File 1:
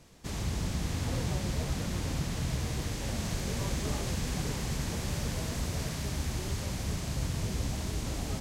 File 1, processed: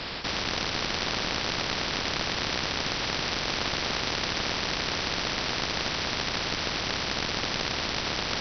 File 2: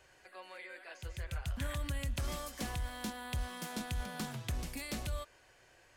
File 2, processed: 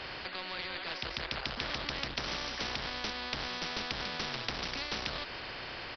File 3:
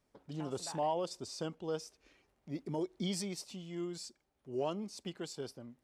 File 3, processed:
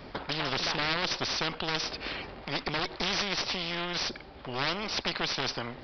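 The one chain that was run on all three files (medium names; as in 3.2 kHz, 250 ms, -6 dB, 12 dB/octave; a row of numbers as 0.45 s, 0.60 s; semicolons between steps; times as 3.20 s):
Chebyshev shaper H 3 -7 dB, 4 -6 dB, 7 -13 dB, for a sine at -20 dBFS; resampled via 11.025 kHz; spectrum-flattening compressor 4:1; trim +5.5 dB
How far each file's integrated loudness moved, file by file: +6.0 LU, +4.5 LU, +9.0 LU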